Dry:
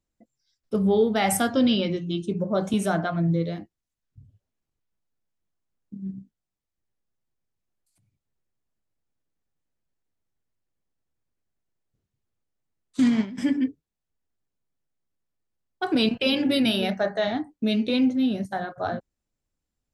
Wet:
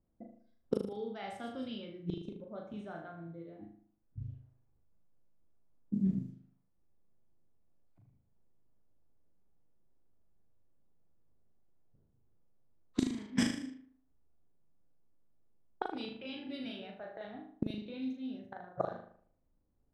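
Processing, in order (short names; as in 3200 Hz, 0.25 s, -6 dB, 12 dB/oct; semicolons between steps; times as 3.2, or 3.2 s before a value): flipped gate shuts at -23 dBFS, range -27 dB; flutter echo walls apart 6.6 m, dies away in 0.59 s; low-pass opened by the level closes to 760 Hz, open at -38 dBFS; gain +5.5 dB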